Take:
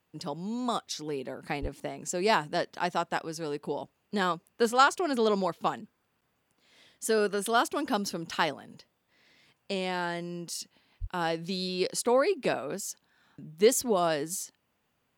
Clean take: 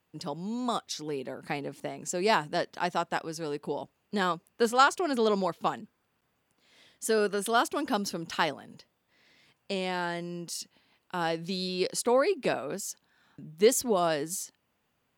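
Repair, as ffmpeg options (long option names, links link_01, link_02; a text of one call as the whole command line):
ffmpeg -i in.wav -filter_complex "[0:a]asplit=3[link_01][link_02][link_03];[link_01]afade=type=out:start_time=1.61:duration=0.02[link_04];[link_02]highpass=frequency=140:width=0.5412,highpass=frequency=140:width=1.3066,afade=type=in:start_time=1.61:duration=0.02,afade=type=out:start_time=1.73:duration=0.02[link_05];[link_03]afade=type=in:start_time=1.73:duration=0.02[link_06];[link_04][link_05][link_06]amix=inputs=3:normalize=0,asplit=3[link_07][link_08][link_09];[link_07]afade=type=out:start_time=11:duration=0.02[link_10];[link_08]highpass=frequency=140:width=0.5412,highpass=frequency=140:width=1.3066,afade=type=in:start_time=11:duration=0.02,afade=type=out:start_time=11.12:duration=0.02[link_11];[link_09]afade=type=in:start_time=11.12:duration=0.02[link_12];[link_10][link_11][link_12]amix=inputs=3:normalize=0" out.wav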